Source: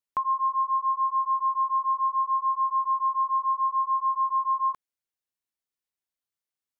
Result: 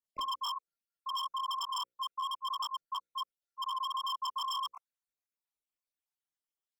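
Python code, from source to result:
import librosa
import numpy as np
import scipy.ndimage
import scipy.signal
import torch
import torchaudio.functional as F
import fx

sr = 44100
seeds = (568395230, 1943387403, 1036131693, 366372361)

y = fx.spec_dropout(x, sr, seeds[0], share_pct=58)
y = fx.chorus_voices(y, sr, voices=4, hz=1.3, base_ms=24, depth_ms=3.5, mix_pct=70)
y = 10.0 ** (-30.0 / 20.0) * (np.abs((y / 10.0 ** (-30.0 / 20.0) + 3.0) % 4.0 - 2.0) - 1.0)
y = fx.hum_notches(y, sr, base_hz=60, count=9)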